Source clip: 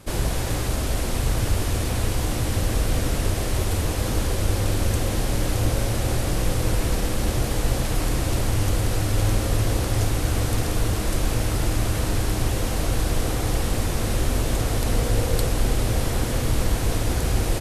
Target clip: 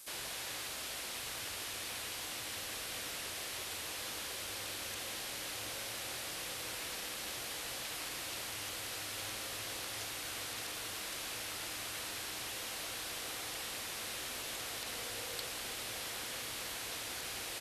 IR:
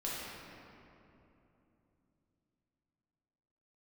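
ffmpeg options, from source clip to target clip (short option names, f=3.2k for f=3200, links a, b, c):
-filter_complex "[0:a]acrossover=split=4200[a][b];[b]acompressor=threshold=-51dB:ratio=4:attack=1:release=60[c];[a][c]amix=inputs=2:normalize=0,aderivative,volume=2.5dB"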